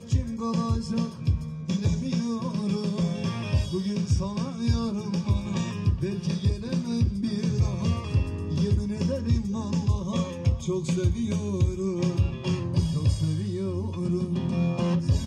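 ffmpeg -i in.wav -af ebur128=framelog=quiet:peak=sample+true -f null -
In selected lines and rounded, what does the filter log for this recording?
Integrated loudness:
  I:         -27.3 LUFS
  Threshold: -37.3 LUFS
Loudness range:
  LRA:         1.1 LU
  Threshold: -47.2 LUFS
  LRA low:   -27.9 LUFS
  LRA high:  -26.7 LUFS
Sample peak:
  Peak:      -11.8 dBFS
True peak:
  Peak:      -11.8 dBFS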